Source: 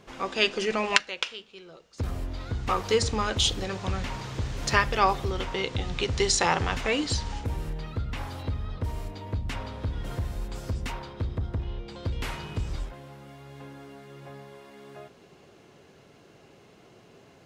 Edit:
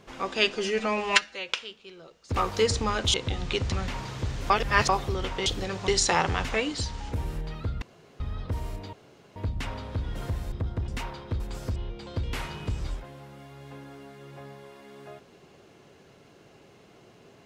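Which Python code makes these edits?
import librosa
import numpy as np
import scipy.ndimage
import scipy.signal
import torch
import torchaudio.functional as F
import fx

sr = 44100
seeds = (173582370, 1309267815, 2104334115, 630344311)

y = fx.edit(x, sr, fx.stretch_span(start_s=0.56, length_s=0.62, factor=1.5),
    fx.cut(start_s=2.05, length_s=0.63),
    fx.swap(start_s=3.46, length_s=0.42, other_s=5.62, other_length_s=0.58),
    fx.reverse_span(start_s=4.66, length_s=0.39),
    fx.clip_gain(start_s=6.92, length_s=0.47, db=-3.0),
    fx.room_tone_fill(start_s=8.14, length_s=0.38),
    fx.insert_room_tone(at_s=9.25, length_s=0.43),
    fx.swap(start_s=10.41, length_s=0.36, other_s=11.29, other_length_s=0.36), tone=tone)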